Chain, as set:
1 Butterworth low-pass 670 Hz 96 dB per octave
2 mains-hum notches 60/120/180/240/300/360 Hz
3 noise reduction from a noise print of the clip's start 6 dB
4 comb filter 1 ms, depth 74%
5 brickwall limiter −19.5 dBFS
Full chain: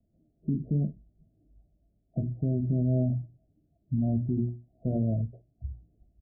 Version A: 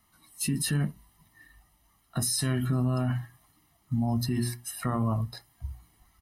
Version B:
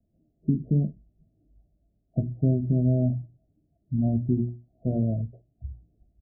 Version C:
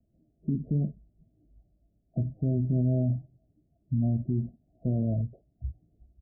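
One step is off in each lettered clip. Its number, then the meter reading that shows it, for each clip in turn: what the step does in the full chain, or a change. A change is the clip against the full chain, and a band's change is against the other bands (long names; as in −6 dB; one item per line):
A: 1, change in momentary loudness spread −2 LU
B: 5, average gain reduction 1.5 dB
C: 2, change in momentary loudness spread −3 LU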